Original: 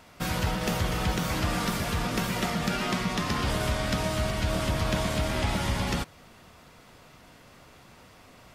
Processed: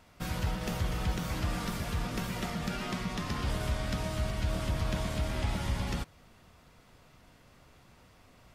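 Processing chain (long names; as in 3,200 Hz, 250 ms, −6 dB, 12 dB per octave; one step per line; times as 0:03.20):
low-shelf EQ 110 Hz +8.5 dB
level −8 dB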